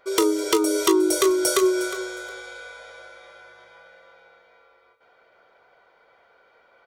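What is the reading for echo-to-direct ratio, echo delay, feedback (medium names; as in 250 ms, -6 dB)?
-14.0 dB, 360 ms, 21%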